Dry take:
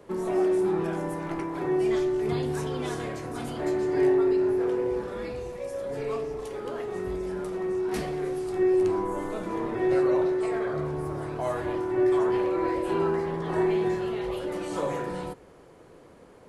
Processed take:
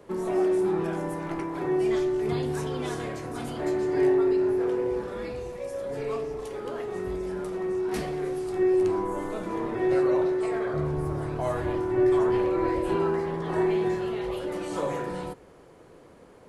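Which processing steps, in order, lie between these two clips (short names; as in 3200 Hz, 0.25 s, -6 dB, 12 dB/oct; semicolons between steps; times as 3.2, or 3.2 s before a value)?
10.74–12.96 low shelf 130 Hz +10 dB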